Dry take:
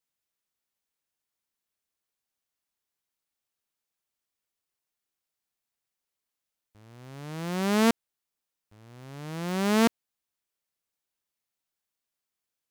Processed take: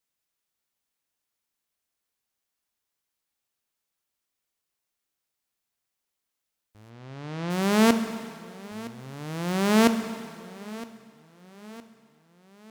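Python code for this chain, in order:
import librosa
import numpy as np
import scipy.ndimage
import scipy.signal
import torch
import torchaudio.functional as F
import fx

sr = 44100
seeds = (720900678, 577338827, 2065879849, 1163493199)

p1 = fx.lowpass(x, sr, hz=4900.0, slope=12, at=(6.89, 7.49), fade=0.02)
p2 = p1 + fx.echo_feedback(p1, sr, ms=964, feedback_pct=50, wet_db=-19, dry=0)
p3 = fx.rev_plate(p2, sr, seeds[0], rt60_s=2.1, hf_ratio=0.95, predelay_ms=0, drr_db=8.5)
y = F.gain(torch.from_numpy(p3), 2.5).numpy()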